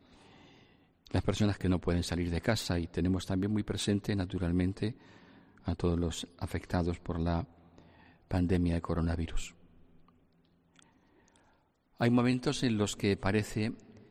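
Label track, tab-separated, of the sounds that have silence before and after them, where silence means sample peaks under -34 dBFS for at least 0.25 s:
1.110000	4.910000	sound
5.680000	7.430000	sound
8.310000	9.440000	sound
12.010000	13.710000	sound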